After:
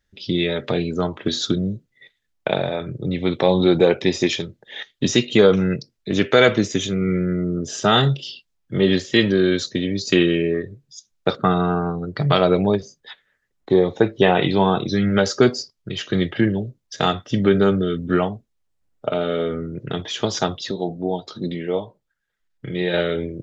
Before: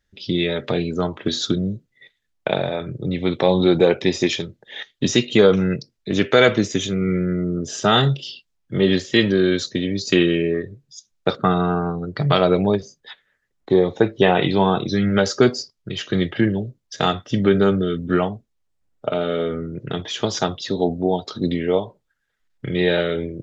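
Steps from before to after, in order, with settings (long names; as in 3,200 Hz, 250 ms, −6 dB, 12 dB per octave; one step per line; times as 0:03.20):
0:20.71–0:22.94: flanger 1.3 Hz, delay 5.4 ms, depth 1 ms, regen −59%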